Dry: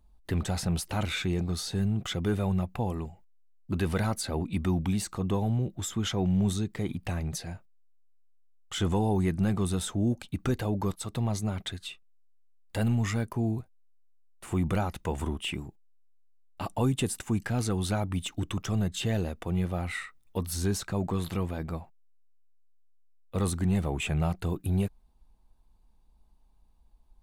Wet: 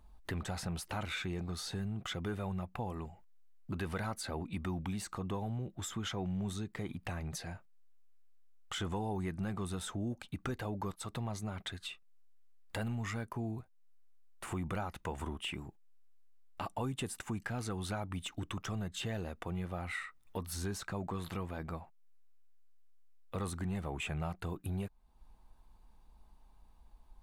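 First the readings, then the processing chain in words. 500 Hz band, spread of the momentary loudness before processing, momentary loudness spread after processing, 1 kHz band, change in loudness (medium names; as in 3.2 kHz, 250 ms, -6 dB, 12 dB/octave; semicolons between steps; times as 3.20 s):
-9.0 dB, 9 LU, 6 LU, -5.5 dB, -9.5 dB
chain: peaking EQ 1.3 kHz +6.5 dB 2.1 oct; compression 2:1, threshold -48 dBFS, peak gain reduction 14.5 dB; trim +2 dB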